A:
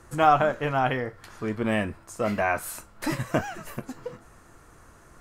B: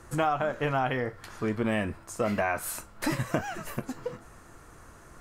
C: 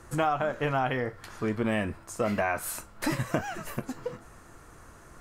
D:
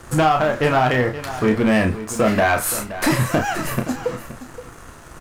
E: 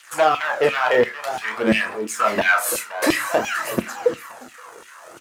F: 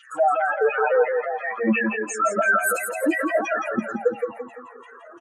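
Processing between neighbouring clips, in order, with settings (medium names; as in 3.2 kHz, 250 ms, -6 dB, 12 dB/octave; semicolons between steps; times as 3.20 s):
compression 6:1, threshold -25 dBFS, peak gain reduction 11.5 dB; trim +1.5 dB
no audible change
waveshaping leveller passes 2; doubling 32 ms -6.5 dB; delay 522 ms -13.5 dB; trim +4.5 dB
LFO high-pass saw down 2.9 Hz 280–3100 Hz; phaser 0.52 Hz, delay 2.2 ms, feedback 37%; on a send at -14 dB: reverberation RT60 0.30 s, pre-delay 3 ms; on the sum: trim -2 dB
spectral contrast enhancement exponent 3.3; on a send: feedback delay 169 ms, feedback 37%, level -5.5 dB; on the sum: trim -2 dB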